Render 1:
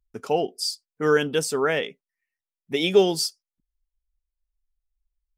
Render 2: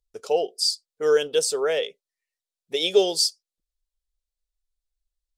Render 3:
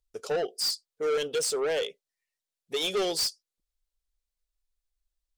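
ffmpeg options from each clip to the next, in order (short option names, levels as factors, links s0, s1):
-af "equalizer=f=125:t=o:w=1:g=-10,equalizer=f=250:t=o:w=1:g=-12,equalizer=f=500:t=o:w=1:g=11,equalizer=f=1000:t=o:w=1:g=-4,equalizer=f=2000:t=o:w=1:g=-4,equalizer=f=4000:t=o:w=1:g=9,equalizer=f=8000:t=o:w=1:g=7,volume=0.631"
-af "asoftclip=type=tanh:threshold=0.0631"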